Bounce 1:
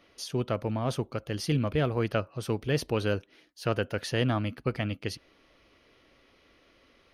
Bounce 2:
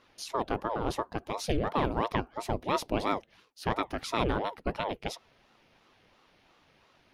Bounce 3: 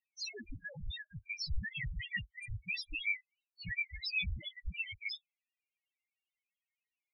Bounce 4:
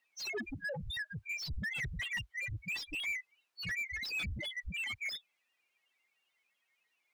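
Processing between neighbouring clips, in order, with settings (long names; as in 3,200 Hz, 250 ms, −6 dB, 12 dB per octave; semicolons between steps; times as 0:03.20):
ring modulator whose carrier an LFO sweeps 480 Hz, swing 70%, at 2.9 Hz; level +1 dB
noise reduction from a noise print of the clip's start 28 dB; drawn EQ curve 120 Hz 0 dB, 1,200 Hz −14 dB, 1,900 Hz +14 dB; spectral peaks only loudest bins 2; level +1 dB
mid-hump overdrive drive 29 dB, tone 2,200 Hz, clips at −24.5 dBFS; level −3.5 dB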